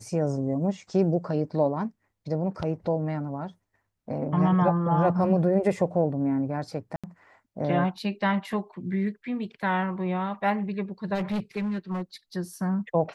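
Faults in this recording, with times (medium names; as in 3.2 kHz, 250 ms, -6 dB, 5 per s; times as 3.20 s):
6.96–7.04 s: dropout 76 ms
11.14–12.02 s: clipped -25 dBFS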